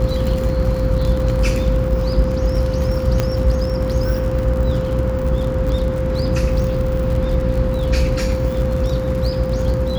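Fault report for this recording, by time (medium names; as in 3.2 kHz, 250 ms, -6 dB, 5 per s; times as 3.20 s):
crackle 72 per s -25 dBFS
hum 60 Hz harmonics 8 -23 dBFS
whine 520 Hz -22 dBFS
3.20 s: pop -5 dBFS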